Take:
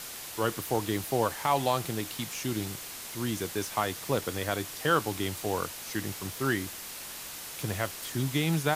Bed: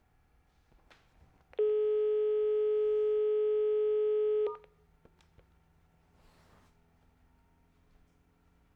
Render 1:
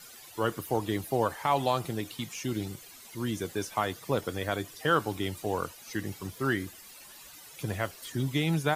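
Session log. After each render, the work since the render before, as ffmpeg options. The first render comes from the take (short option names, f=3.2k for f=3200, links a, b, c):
-af "afftdn=nr=14:nf=-42"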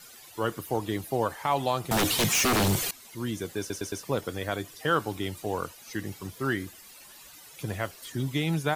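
-filter_complex "[0:a]asettb=1/sr,asplit=3[a][b][c];[a]atrim=end=1.914[d];[b]atrim=start=1.91:end=2.91,asetpts=PTS-STARTPTS,afade=t=in:d=0.004:c=qsin,afade=t=out:st=0.996:d=0.004:c=qsin,aeval=exprs='0.1*sin(PI/2*6.31*val(0)/0.1)':c=same[e];[c]atrim=start=2.906[f];[d][e]acrossfade=d=0.004:c1=hsin:c2=qsin[g];[g][f]acrossfade=d=0.004:c1=qsin:c2=hsin,asplit=5[h][i][j][k][l];[h]atrim=end=3.702[m];[i]atrim=start=3.588:end=3.702[n];[j]atrim=start=3.588:end=3.702[o];[k]atrim=start=3.588:end=3.702[p];[l]atrim=start=4.028[q];[m][n]acrossfade=d=0.004:c1=hsin:c2=hsin[r];[r][o]acrossfade=d=0.004:c1=hsin:c2=hsin[s];[s][p]acrossfade=d=0.004:c1=hsin:c2=hsin[t];[t][q]acrossfade=d=0.004:c1=hsin:c2=hsin"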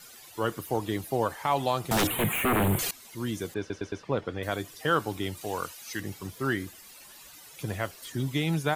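-filter_complex "[0:a]asettb=1/sr,asplit=3[a][b][c];[a]atrim=end=2.074[d];[b]atrim=start=2.07:end=2.79,asetpts=PTS-STARTPTS,afade=t=in:d=0.004:c=qsin,afade=t=out:st=0.716:d=0.004:c=qsin,asuperstop=centerf=5300:order=4:qfactor=0.71[e];[c]atrim=start=2.786[f];[d][e]acrossfade=d=0.004:c1=hsin:c2=qsin[g];[g][f]acrossfade=d=0.004:c1=qsin:c2=hsin,asettb=1/sr,asplit=3[h][i][j];[h]atrim=end=3.544[k];[i]atrim=start=3.54:end=4.43,asetpts=PTS-STARTPTS,afade=t=in:d=0.004:c=qsin,afade=t=out:st=0.886:d=0.004:c=qsin,lowpass=3k[l];[j]atrim=start=4.426[m];[k][l]acrossfade=d=0.004:c1=hsin:c2=qsin[n];[n][m]acrossfade=d=0.004:c1=qsin:c2=hsin,asettb=1/sr,asplit=3[o][p][q];[o]atrim=end=5.414[r];[p]atrim=start=5.41:end=6,asetpts=PTS-STARTPTS,afade=t=in:d=0.004:c=qsin,afade=t=out:st=0.586:d=0.004:c=qsin,tiltshelf=f=970:g=-4.5[s];[q]atrim=start=5.996[t];[r][s]acrossfade=d=0.004:c1=hsin:c2=qsin[u];[u][t]acrossfade=d=0.004:c1=qsin:c2=hsin"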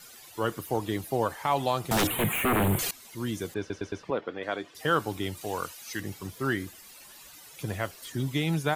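-filter_complex "[0:a]asettb=1/sr,asplit=3[a][b][c];[a]atrim=end=4.104[d];[b]atrim=start=4.1:end=4.75,asetpts=PTS-STARTPTS,afade=t=in:d=0.004:c=qsin,afade=t=out:st=0.646:d=0.004:c=qsin,highpass=260,lowpass=3.7k[e];[c]atrim=start=4.746[f];[d][e]acrossfade=d=0.004:c1=hsin:c2=qsin[g];[g][f]acrossfade=d=0.004:c1=qsin:c2=hsin"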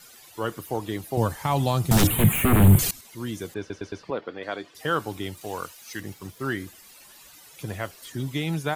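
-filter_complex "[0:a]asettb=1/sr,asplit=3[a][b][c];[a]atrim=end=1.174[d];[b]atrim=start=1.17:end=3.01,asetpts=PTS-STARTPTS,afade=t=in:d=0.004:c=qsin,afade=t=out:st=1.836:d=0.004:c=qsin,bass=f=250:g=14,treble=f=4k:g=6[e];[c]atrim=start=3.006[f];[d][e]acrossfade=d=0.004:c1=hsin:c2=qsin[g];[g][f]acrossfade=d=0.004:c1=qsin:c2=hsin,asettb=1/sr,asplit=3[h][i][j];[h]atrim=end=3.844[k];[i]atrim=start=3.84:end=4.69,asetpts=PTS-STARTPTS,afade=t=in:d=0.004:c=qsin,afade=t=out:st=0.846:d=0.004:c=qsin,equalizer=f=4.5k:t=o:w=0.24:g=7.5[l];[j]atrim=start=4.686[m];[k][l]acrossfade=d=0.004:c1=hsin:c2=qsin[n];[n][m]acrossfade=d=0.004:c1=qsin:c2=hsin,asettb=1/sr,asplit=3[o][p][q];[o]atrim=end=5.224[r];[p]atrim=start=5.22:end=6.55,asetpts=PTS-STARTPTS,afade=t=in:d=0.004:c=qsin,afade=t=out:st=1.326:d=0.004:c=qsin,aeval=exprs='sgn(val(0))*max(abs(val(0))-0.00126,0)':c=same[s];[q]atrim=start=6.546[t];[r][s]acrossfade=d=0.004:c1=hsin:c2=qsin[u];[u][t]acrossfade=d=0.004:c1=qsin:c2=hsin"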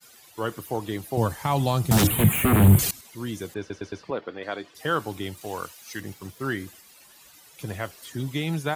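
-af "agate=range=-33dB:threshold=-46dB:ratio=3:detection=peak,highpass=42"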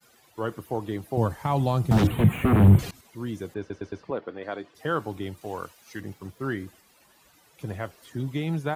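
-filter_complex "[0:a]acrossover=split=5400[a][b];[b]acompressor=threshold=-36dB:ratio=4:attack=1:release=60[c];[a][c]amix=inputs=2:normalize=0,highshelf=f=2.1k:g=-10.5"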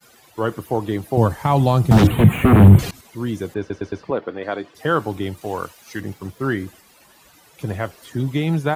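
-af "volume=8dB,alimiter=limit=-1dB:level=0:latency=1"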